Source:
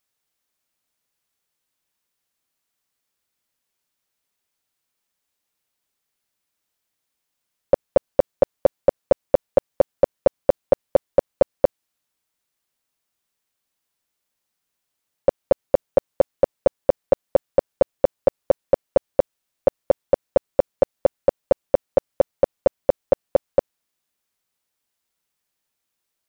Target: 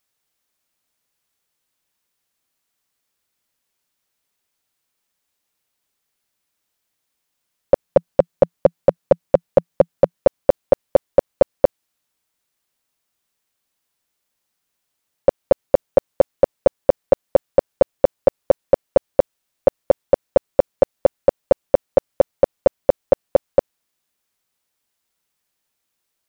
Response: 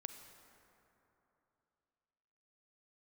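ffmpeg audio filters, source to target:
-filter_complex "[0:a]asettb=1/sr,asplit=3[s0][s1][s2];[s0]atrim=end=7.844[s3];[s1]atrim=start=7.84:end=10.18,asetpts=PTS-STARTPTS,afade=t=in:d=0.004:c=qsin,afade=t=out:st=2.336:d=0.004:c=qsin,equalizer=f=170:w=3.3:g=9.5[s4];[s2]atrim=start=10.176[s5];[s3][s4]acrossfade=d=0.004:c1=hsin:c2=qsin[s6];[s6][s5]acrossfade=d=0.004:c1=qsin:c2=hsin,volume=1.41"

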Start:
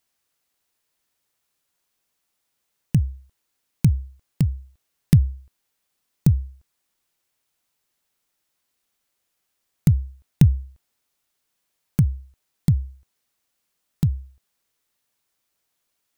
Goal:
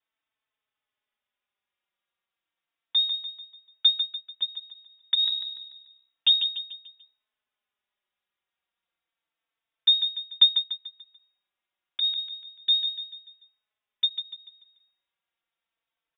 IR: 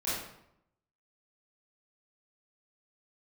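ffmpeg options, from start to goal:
-filter_complex "[0:a]asettb=1/sr,asplit=3[s0][s1][s2];[s0]atrim=end=4.014[s3];[s1]atrim=start=4.01:end=4.42,asetpts=PTS-STARTPTS,afade=t=in:d=0.004:c=qsin,afade=t=out:st=0.406:d=0.004:c=qsin,acompressor=threshold=0.01:ratio=6[s4];[s2]atrim=start=4.416[s5];[s3][s4]acrossfade=d=0.004:c1=hsin:c2=qsin[s6];[s6][s5]acrossfade=d=0.004:c1=qsin:c2=hsin,asettb=1/sr,asplit=3[s7][s8][s9];[s7]atrim=end=5.224[s10];[s8]atrim=start=5.22:end=6.3,asetpts=PTS-STARTPTS,afade=t=in:d=0.004:c=qsin,afade=t=out:st=1.076:d=0.004:c=qsin,aeval=exprs='0.596*(cos(1*acos(clip(val(0)/0.596,-1,1)))-cos(1*PI/2))+0.15*(cos(8*acos(clip(val(0)/0.596,-1,1)))-cos(8*PI/2))':c=same[s11];[s9]atrim=start=6.296[s12];[s10][s11]acrossfade=d=0.004:c1=hsin:c2=qsin[s13];[s13][s12]acrossfade=d=0.004:c1=qsin:c2=hsin,aecho=1:1:146|292|438|584|730:0.398|0.171|0.0736|0.0317|0.0136,lowpass=f=3200:t=q:w=0.5098,lowpass=f=3200:t=q:w=0.6013,lowpass=f=3200:t=q:w=0.9,lowpass=f=3200:t=q:w=2.563,afreqshift=-3800,asplit=2[s14][s15];[s15]adelay=4,afreqshift=-0.31[s16];[s14][s16]amix=inputs=2:normalize=1,volume=0.708"

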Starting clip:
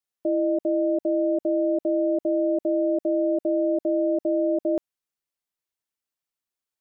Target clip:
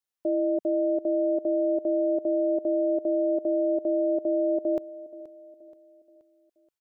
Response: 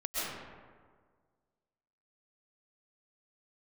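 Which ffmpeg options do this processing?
-filter_complex "[0:a]equalizer=f=210:w=2.2:g=-6,asplit=2[s0][s1];[s1]aecho=0:1:477|954|1431|1908:0.126|0.0567|0.0255|0.0115[s2];[s0][s2]amix=inputs=2:normalize=0,volume=0.841"

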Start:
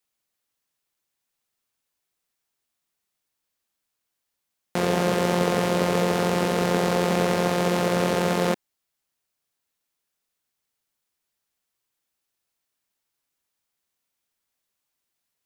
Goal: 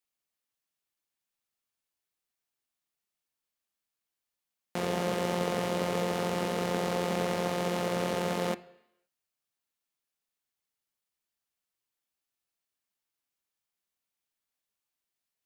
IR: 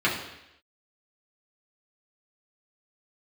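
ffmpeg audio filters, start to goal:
-filter_complex "[0:a]bandreject=f=75.09:t=h:w=4,bandreject=f=150.18:t=h:w=4,asplit=2[s0][s1];[1:a]atrim=start_sample=2205,lowshelf=f=320:g=-10[s2];[s1][s2]afir=irnorm=-1:irlink=0,volume=0.0501[s3];[s0][s3]amix=inputs=2:normalize=0,volume=0.398"

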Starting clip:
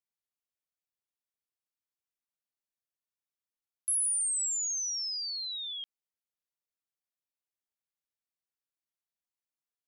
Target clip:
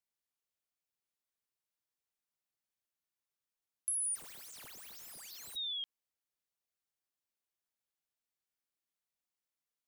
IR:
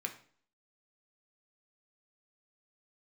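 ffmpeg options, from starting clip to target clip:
-filter_complex "[0:a]acompressor=threshold=0.02:ratio=6,asplit=3[s0][s1][s2];[s0]afade=t=out:st=4.14:d=0.02[s3];[s1]aeval=exprs='(mod(188*val(0)+1,2)-1)/188':c=same,afade=t=in:st=4.14:d=0.02,afade=t=out:st=5.55:d=0.02[s4];[s2]afade=t=in:st=5.55:d=0.02[s5];[s3][s4][s5]amix=inputs=3:normalize=0"

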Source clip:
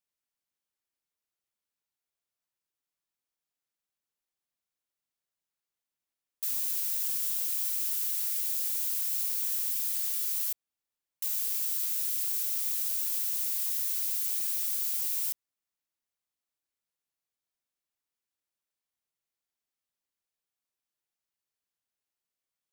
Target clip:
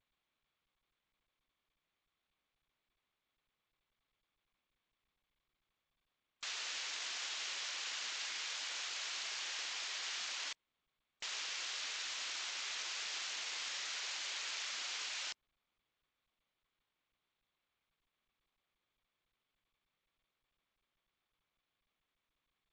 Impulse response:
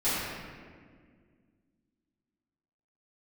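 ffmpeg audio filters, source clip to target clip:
-af "lowpass=3100,afftfilt=real='re*gte(hypot(re,im),0.000562)':imag='im*gte(hypot(re,im),0.000562)':win_size=1024:overlap=0.75,volume=3.55" -ar 16000 -c:a g722

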